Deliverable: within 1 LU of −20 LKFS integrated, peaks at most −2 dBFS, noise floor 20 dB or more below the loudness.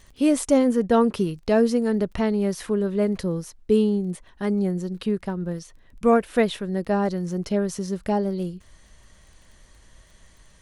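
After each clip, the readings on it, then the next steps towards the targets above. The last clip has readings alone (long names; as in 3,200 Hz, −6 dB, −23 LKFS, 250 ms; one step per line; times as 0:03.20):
crackle rate 19 per second; integrated loudness −23.5 LKFS; sample peak −7.5 dBFS; target loudness −20.0 LKFS
→ click removal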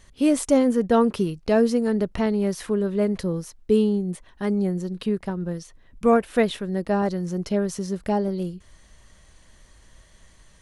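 crackle rate 0 per second; integrated loudness −23.5 LKFS; sample peak −7.5 dBFS; target loudness −20.0 LKFS
→ level +3.5 dB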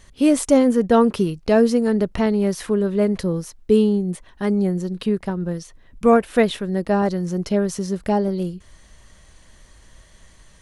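integrated loudness −20.0 LKFS; sample peak −4.0 dBFS; background noise floor −51 dBFS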